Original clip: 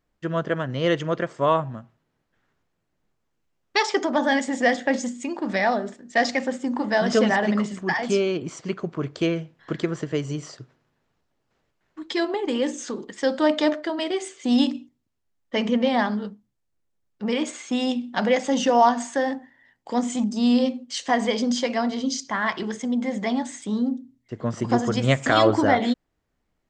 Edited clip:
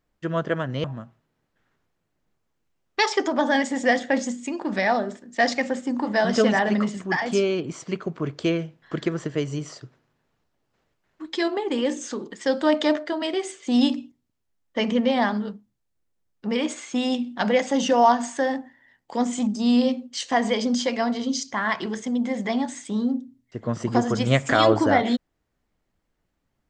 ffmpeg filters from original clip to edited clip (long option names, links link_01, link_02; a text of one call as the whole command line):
ffmpeg -i in.wav -filter_complex "[0:a]asplit=2[link_01][link_02];[link_01]atrim=end=0.842[link_03];[link_02]atrim=start=1.608[link_04];[link_03][link_04]acrossfade=duration=0.004:curve1=hsin:curve2=hsin" out.wav